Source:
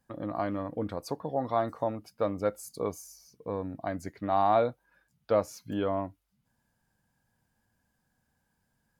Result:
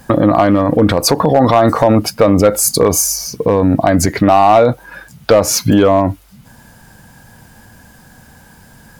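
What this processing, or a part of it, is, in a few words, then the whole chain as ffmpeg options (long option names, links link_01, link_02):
loud club master: -af "acompressor=threshold=-29dB:ratio=2.5,asoftclip=type=hard:threshold=-24dB,alimiter=level_in=34.5dB:limit=-1dB:release=50:level=0:latency=1,volume=-1dB"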